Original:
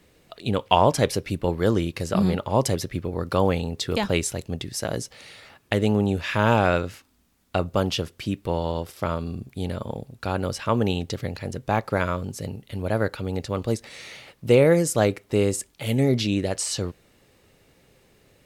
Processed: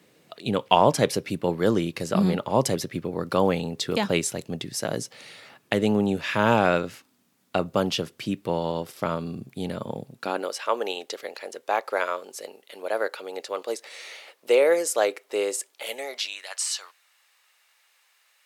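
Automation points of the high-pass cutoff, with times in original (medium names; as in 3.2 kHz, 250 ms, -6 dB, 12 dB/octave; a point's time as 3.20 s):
high-pass 24 dB/octave
10.09 s 130 Hz
10.52 s 420 Hz
15.75 s 420 Hz
16.39 s 970 Hz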